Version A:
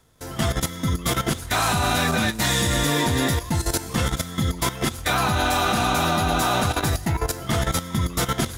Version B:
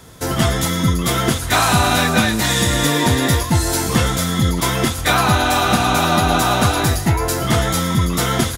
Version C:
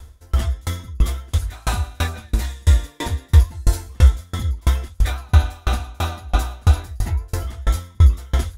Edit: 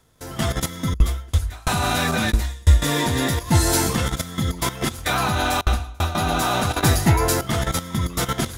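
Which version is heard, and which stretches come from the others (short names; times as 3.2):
A
0.94–1.68 from C
2.32–2.82 from C
3.51–3.92 from B, crossfade 0.10 s
5.61–6.15 from C
6.83–7.41 from B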